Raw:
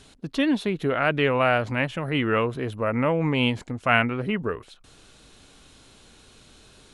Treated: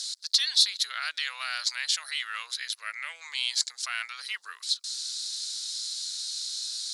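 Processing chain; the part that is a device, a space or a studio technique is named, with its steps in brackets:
0:02.53–0:03.16: octave-band graphic EQ 125/250/1,000/2,000/4,000/8,000 Hz +9/−8/−8/+6/−3/−4 dB
over-bright horn tweeter (high shelf with overshoot 3,600 Hz +10 dB, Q 3; brickwall limiter −19.5 dBFS, peak gain reduction 11.5 dB)
high-pass filter 1,100 Hz 24 dB per octave
octave-band graphic EQ 125/250/500/1,000/2,000/4,000/8,000 Hz −5/−5/−6/−7/+4/+11/+7 dB

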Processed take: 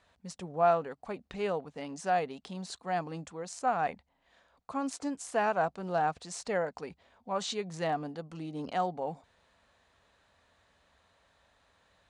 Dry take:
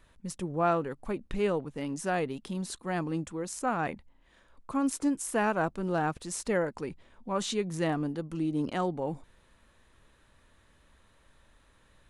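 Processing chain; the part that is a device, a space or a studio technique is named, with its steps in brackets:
car door speaker (loudspeaker in its box 85–8,000 Hz, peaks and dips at 130 Hz −10 dB, 220 Hz −5 dB, 330 Hz −9 dB, 720 Hz +8 dB, 4,400 Hz +4 dB)
level −2.5 dB

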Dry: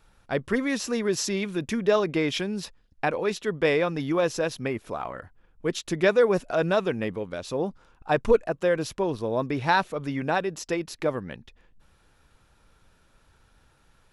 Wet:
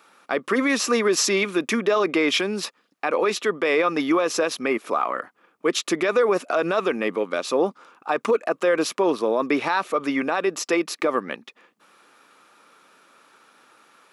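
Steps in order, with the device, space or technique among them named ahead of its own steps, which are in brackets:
laptop speaker (high-pass filter 250 Hz 24 dB per octave; parametric band 1,200 Hz +10.5 dB 0.24 octaves; parametric band 2,300 Hz +4 dB 0.43 octaves; brickwall limiter −19.5 dBFS, peak gain reduction 13.5 dB)
level +8 dB

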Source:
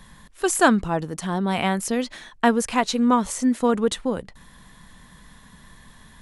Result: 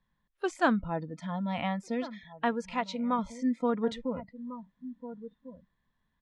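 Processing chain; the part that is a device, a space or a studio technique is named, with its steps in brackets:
shout across a valley (high-frequency loss of the air 170 metres; slap from a distant wall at 240 metres, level −13 dB)
noise reduction from a noise print of the clip's start 21 dB
0:02.03–0:03.19: low-shelf EQ 400 Hz −5.5 dB
level −8 dB

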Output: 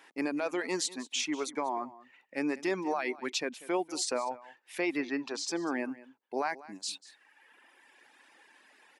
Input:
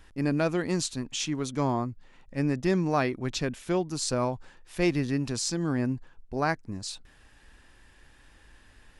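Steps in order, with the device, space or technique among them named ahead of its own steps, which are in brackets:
laptop speaker (high-pass filter 280 Hz 24 dB per octave; parametric band 860 Hz +6 dB 0.6 octaves; parametric band 2,200 Hz +6.5 dB 0.56 octaves; brickwall limiter −20.5 dBFS, peak gain reduction 11 dB)
0:04.81–0:05.48: low-pass filter 4,600 Hz 12 dB per octave
reverb reduction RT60 1.5 s
single-tap delay 192 ms −18.5 dB

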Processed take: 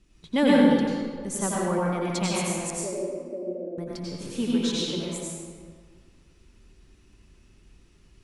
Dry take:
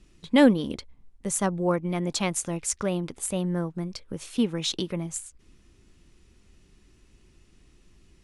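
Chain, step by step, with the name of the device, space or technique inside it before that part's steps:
0:02.70–0:03.78: elliptic band-pass filter 240–610 Hz
stairwell (convolution reverb RT60 1.8 s, pre-delay 84 ms, DRR −6 dB)
level −5.5 dB

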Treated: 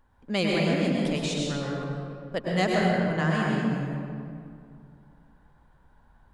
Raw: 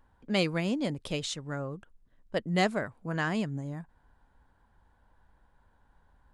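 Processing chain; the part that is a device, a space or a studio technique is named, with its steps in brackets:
stairwell (convolution reverb RT60 2.3 s, pre-delay 96 ms, DRR −3.5 dB)

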